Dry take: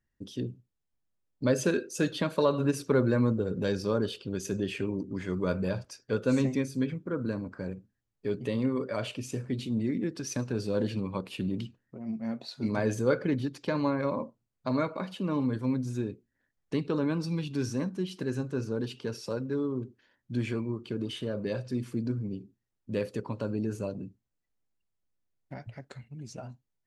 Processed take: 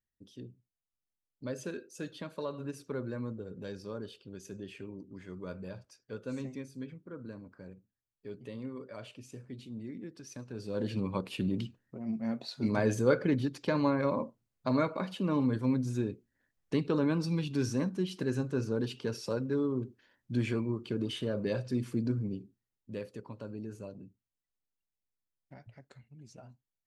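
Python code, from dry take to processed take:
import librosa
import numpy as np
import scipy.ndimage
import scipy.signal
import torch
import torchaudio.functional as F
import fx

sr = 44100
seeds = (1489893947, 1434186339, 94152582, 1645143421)

y = fx.gain(x, sr, db=fx.line((10.45, -12.5), (11.03, 0.0), (22.24, 0.0), (23.08, -10.0)))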